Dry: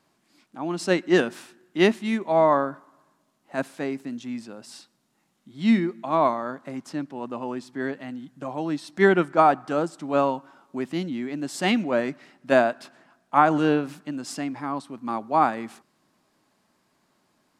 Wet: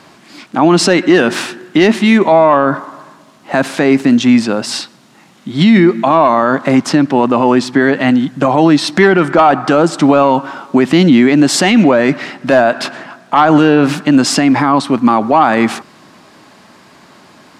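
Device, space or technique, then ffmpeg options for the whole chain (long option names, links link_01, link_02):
mastering chain: -af "highpass=49,equalizer=frequency=3000:width_type=o:width=3:gain=3,acompressor=threshold=-27dB:ratio=1.5,asoftclip=type=tanh:threshold=-13dB,asoftclip=type=hard:threshold=-15.5dB,alimiter=level_in=25dB:limit=-1dB:release=50:level=0:latency=1,highshelf=frequency=8200:gain=-11"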